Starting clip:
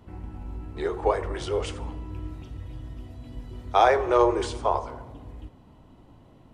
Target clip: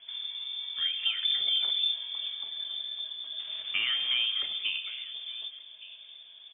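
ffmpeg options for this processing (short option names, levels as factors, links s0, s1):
-filter_complex "[0:a]asettb=1/sr,asplit=3[s0][s1][s2];[s0]atrim=end=1.234[s3];[s1]atrim=start=1.23:end=1.94,asetpts=PTS-STARTPTS,afade=t=in:d=0.004:c=qsin,afade=t=out:st=0.706:d=0.004:c=qsin,aemphasis=mode=reproduction:type=riaa[s4];[s2]atrim=start=1.936[s5];[s3][s4]acrossfade=d=0.004:c1=hsin:c2=qsin[s6];[s6][s5]acrossfade=d=0.004:c1=qsin:c2=hsin,volume=2.82,asoftclip=hard,volume=0.355,equalizer=f=700:w=3.1:g=-11.5,acrossover=split=81|1700[s7][s8][s9];[s7]acompressor=threshold=0.00708:ratio=4[s10];[s8]acompressor=threshold=0.0355:ratio=4[s11];[s9]acompressor=threshold=0.00251:ratio=4[s12];[s10][s11][s12]amix=inputs=3:normalize=0,bandreject=f=1000:w=7,asettb=1/sr,asplit=3[s13][s14][s15];[s13]atrim=end=3.394[s16];[s14]atrim=start=3.39:end=4.26,asetpts=PTS-STARTPTS,afade=t=in:d=0.004:c=qsin,afade=t=out:st=0.866:d=0.004:c=qsin,acrusher=bits=6:mix=0:aa=0.5[s17];[s15]atrim=start=4.256[s18];[s16][s17]acrossfade=d=0.004:c1=hsin:c2=qsin[s19];[s19][s18]acrossfade=d=0.004:c1=qsin:c2=hsin,asplit=2[s20][s21];[s21]adelay=1166,volume=0.141,highshelf=f=4000:g=-26.2[s22];[s20][s22]amix=inputs=2:normalize=0,lowpass=f=3100:t=q:w=0.5098,lowpass=f=3100:t=q:w=0.6013,lowpass=f=3100:t=q:w=0.9,lowpass=f=3100:t=q:w=2.563,afreqshift=-3600,volume=1.26"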